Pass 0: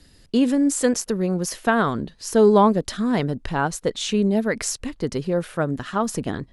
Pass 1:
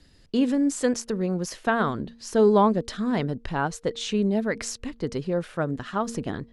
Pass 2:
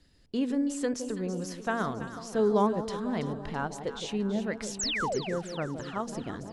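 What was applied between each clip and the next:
Bessel low-pass filter 6,800 Hz, order 2; hum removal 231.8 Hz, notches 2; level −3.5 dB
sound drawn into the spectrogram fall, 0:04.79–0:05.19, 340–8,400 Hz −24 dBFS; delay that swaps between a low-pass and a high-pass 165 ms, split 880 Hz, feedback 75%, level −8.5 dB; level −7 dB

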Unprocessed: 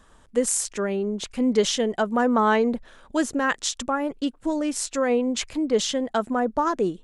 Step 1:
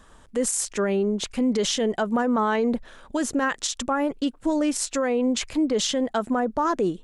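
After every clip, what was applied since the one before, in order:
brickwall limiter −18.5 dBFS, peak gain reduction 10.5 dB
level +3 dB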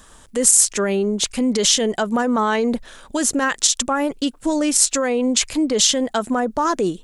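high-shelf EQ 3,800 Hz +12 dB
level +3 dB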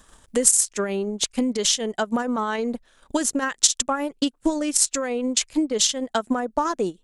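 transient designer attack +8 dB, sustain −11 dB
level −6.5 dB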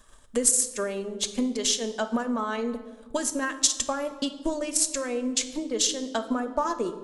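convolution reverb RT60 1.5 s, pre-delay 3 ms, DRR 7.5 dB
level −5 dB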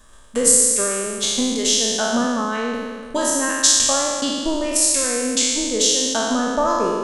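peak hold with a decay on every bin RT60 1.77 s
level +3 dB

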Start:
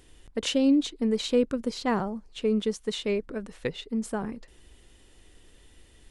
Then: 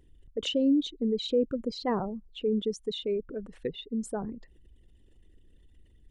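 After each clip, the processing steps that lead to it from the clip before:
spectral envelope exaggerated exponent 2
level −2.5 dB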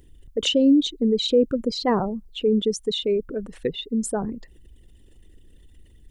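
high-shelf EQ 6,000 Hz +9 dB
level +7.5 dB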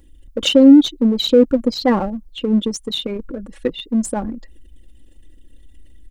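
comb filter 3.6 ms, depth 70%
in parallel at −3 dB: slack as between gear wheels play −18.5 dBFS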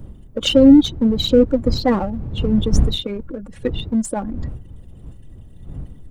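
spectral magnitudes quantised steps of 15 dB
wind on the microphone 100 Hz −24 dBFS
level −1 dB

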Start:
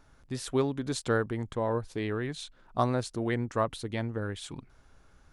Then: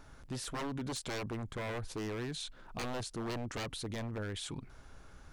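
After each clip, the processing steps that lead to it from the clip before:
wave folding −28.5 dBFS
brickwall limiter −37.5 dBFS, peak gain reduction 9 dB
level +5 dB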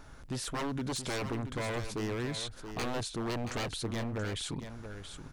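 single-tap delay 678 ms −9.5 dB
level +3.5 dB

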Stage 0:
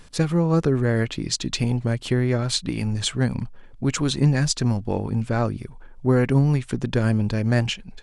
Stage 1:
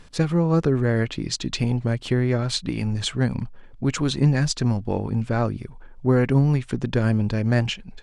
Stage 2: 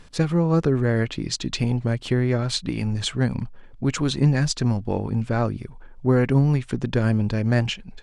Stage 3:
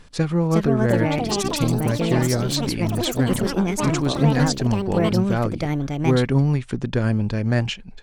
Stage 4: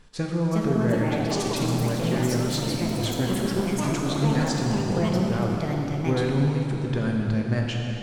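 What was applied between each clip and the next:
high-shelf EQ 9,300 Hz −11.5 dB
no processing that can be heard
delay with pitch and tempo change per echo 411 ms, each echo +5 semitones, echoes 3
dense smooth reverb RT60 3.7 s, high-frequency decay 0.85×, DRR −0.5 dB; level −7 dB

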